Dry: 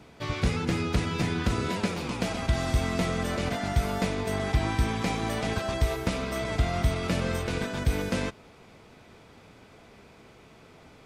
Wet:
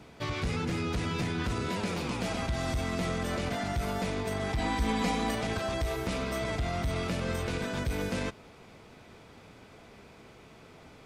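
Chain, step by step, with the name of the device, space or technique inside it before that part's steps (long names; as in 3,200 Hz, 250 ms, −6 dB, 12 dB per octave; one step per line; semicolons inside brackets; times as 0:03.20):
soft clipper into limiter (soft clipping −17.5 dBFS, distortion −18 dB; brickwall limiter −24 dBFS, peak gain reduction 6 dB)
0:04.58–0:05.35: comb filter 4.1 ms, depth 97%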